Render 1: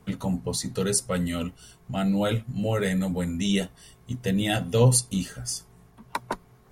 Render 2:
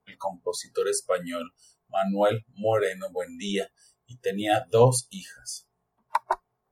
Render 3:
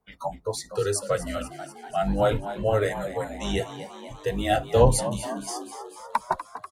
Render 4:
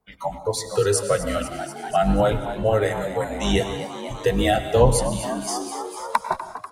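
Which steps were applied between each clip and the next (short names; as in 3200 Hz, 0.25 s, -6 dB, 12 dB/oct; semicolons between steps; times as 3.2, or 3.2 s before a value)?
spectral noise reduction 22 dB; bell 750 Hz +14 dB 1.9 oct; gain -5.5 dB
octaver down 2 oct, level 0 dB; frequency-shifting echo 0.244 s, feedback 65%, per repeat +84 Hz, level -12.5 dB
recorder AGC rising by 7 dB/s; reverb, pre-delay 91 ms, DRR 11 dB; gain +1.5 dB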